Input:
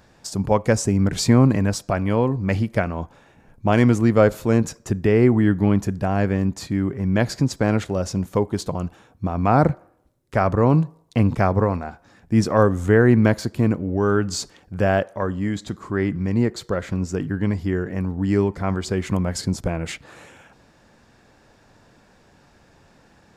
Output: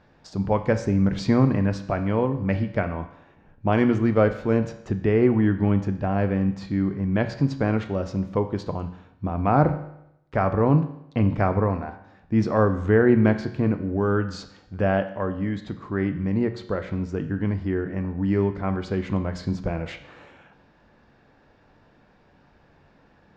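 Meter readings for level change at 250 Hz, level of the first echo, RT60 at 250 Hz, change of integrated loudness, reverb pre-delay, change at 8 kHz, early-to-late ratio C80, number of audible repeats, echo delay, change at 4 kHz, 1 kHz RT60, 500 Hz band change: −2.5 dB, no echo audible, 0.80 s, −3.0 dB, 7 ms, below −15 dB, 14.0 dB, no echo audible, no echo audible, −9.0 dB, 0.80 s, −2.5 dB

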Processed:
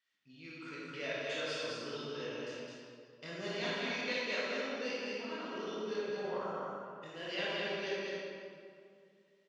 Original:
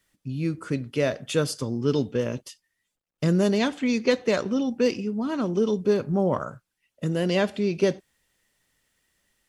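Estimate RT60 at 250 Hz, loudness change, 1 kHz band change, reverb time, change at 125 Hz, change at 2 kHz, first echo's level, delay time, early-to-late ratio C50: 2.5 s, −13.5 dB, −8.5 dB, 2.3 s, −23.5 dB, −4.5 dB, −3.5 dB, 210 ms, −5.5 dB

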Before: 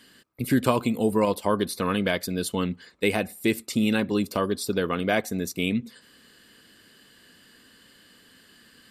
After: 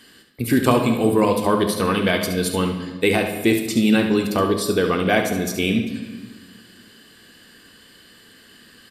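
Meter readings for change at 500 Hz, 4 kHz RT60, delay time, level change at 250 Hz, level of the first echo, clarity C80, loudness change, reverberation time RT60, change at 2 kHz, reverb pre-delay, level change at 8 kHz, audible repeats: +6.0 dB, 1.2 s, 70 ms, +6.0 dB, −8.5 dB, 9.5 dB, +6.0 dB, 1.3 s, +6.0 dB, 3 ms, +6.0 dB, 1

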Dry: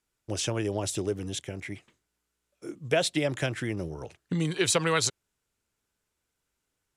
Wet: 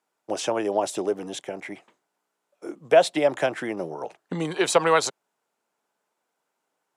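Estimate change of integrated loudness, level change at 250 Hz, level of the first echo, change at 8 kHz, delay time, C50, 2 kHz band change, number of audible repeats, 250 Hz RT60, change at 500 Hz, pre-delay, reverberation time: +4.5 dB, +1.5 dB, no echo audible, −1.5 dB, no echo audible, no reverb audible, +3.0 dB, no echo audible, no reverb audible, +8.0 dB, no reverb audible, no reverb audible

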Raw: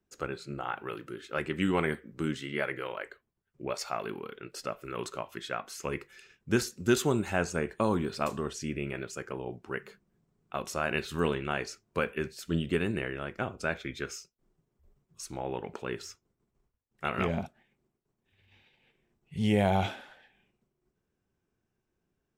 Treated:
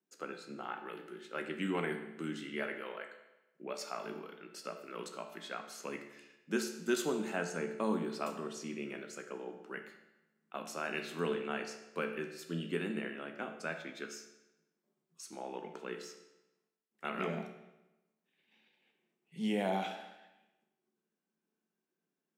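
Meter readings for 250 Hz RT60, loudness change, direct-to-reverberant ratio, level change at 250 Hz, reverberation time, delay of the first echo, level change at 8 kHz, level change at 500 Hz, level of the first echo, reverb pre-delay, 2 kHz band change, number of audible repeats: 1.0 s, −6.5 dB, 5.5 dB, −6.0 dB, 1.0 s, no echo audible, −6.0 dB, −6.0 dB, no echo audible, 14 ms, −6.0 dB, no echo audible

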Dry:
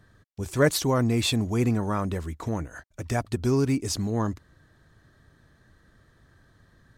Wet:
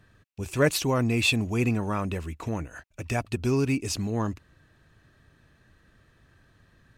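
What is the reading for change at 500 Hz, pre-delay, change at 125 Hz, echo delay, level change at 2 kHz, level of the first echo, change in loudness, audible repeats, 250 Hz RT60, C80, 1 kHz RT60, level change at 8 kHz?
−1.5 dB, no reverb audible, −1.5 dB, no echo audible, +3.5 dB, no echo audible, −0.5 dB, no echo audible, no reverb audible, no reverb audible, no reverb audible, −1.5 dB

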